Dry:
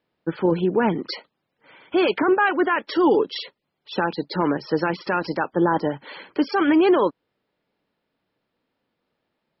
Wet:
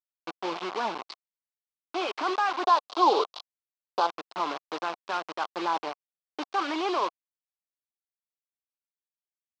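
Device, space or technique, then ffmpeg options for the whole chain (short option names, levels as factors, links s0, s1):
hand-held game console: -filter_complex "[0:a]acrusher=bits=3:mix=0:aa=0.000001,highpass=470,equalizer=f=490:t=q:w=4:g=-5,equalizer=f=730:t=q:w=4:g=5,equalizer=f=1100:t=q:w=4:g=8,equalizer=f=1800:t=q:w=4:g=-6,lowpass=f=4900:w=0.5412,lowpass=f=4900:w=1.3066,asettb=1/sr,asplit=3[s0][s1][s2];[s0]atrim=end=2.644[s3];[s1]atrim=start=2.64:end=4.07,asetpts=PTS-STARTPTS,afade=t=in:d=0.004:c=qsin,afade=t=out:st=1.426:d=0.004:c=qsin,equalizer=f=125:t=o:w=1:g=-9,equalizer=f=500:t=o:w=1:g=8,equalizer=f=1000:t=o:w=1:g=7,equalizer=f=2000:t=o:w=1:g=-10,equalizer=f=4000:t=o:w=1:g=9[s4];[s2]atrim=start=4.066[s5];[s3][s4]acrossfade=d=0.004:c1=hsin:c2=qsin[s6];[s6][s5]acrossfade=d=0.004:c1=qsin:c2=hsin,volume=0.376"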